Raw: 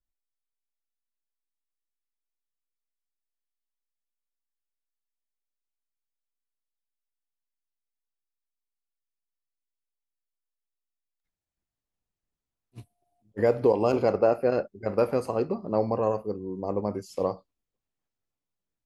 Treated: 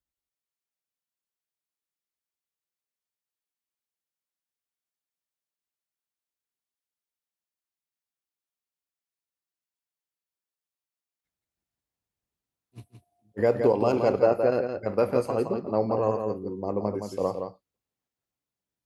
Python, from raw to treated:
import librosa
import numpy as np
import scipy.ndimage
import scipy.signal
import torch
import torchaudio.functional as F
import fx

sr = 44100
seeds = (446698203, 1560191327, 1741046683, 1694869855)

y = scipy.signal.sosfilt(scipy.signal.butter(2, 60.0, 'highpass', fs=sr, output='sos'), x)
y = y + 10.0 ** (-6.5 / 20.0) * np.pad(y, (int(168 * sr / 1000.0), 0))[:len(y)]